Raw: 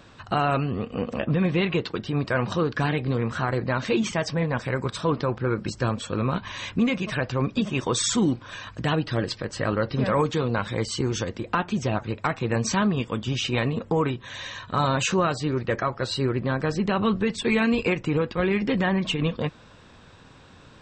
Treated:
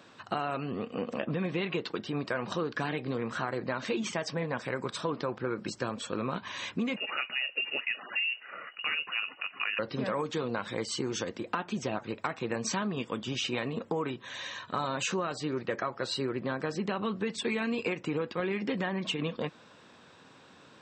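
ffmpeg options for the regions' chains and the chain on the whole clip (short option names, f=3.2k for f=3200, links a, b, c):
-filter_complex "[0:a]asettb=1/sr,asplit=3[a][b][c];[a]atrim=end=6.964[d];[b]atrim=start=6.96:end=9.79,asetpts=PTS-STARTPTS,afade=t=in:d=0.004:c=qsin,afade=t=out:st=2.826:d=0.004:c=qsin,highpass=f=220:p=1,lowpass=f=2.6k:t=q:w=0.5098,lowpass=f=2.6k:t=q:w=0.6013,lowpass=f=2.6k:t=q:w=0.9,lowpass=f=2.6k:t=q:w=2.563,afreqshift=-3000[e];[c]atrim=start=9.786[f];[d][e]acrossfade=d=0.004:c1=hsin:c2=qsin[g];[g][f]acrossfade=d=0.004:c1=qsin:c2=hsin,highpass=200,acompressor=threshold=-24dB:ratio=6,volume=-3.5dB"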